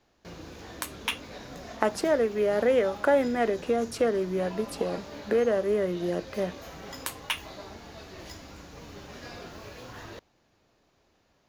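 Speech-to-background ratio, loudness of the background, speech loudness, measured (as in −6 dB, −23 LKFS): 16.0 dB, −43.5 LKFS, −27.5 LKFS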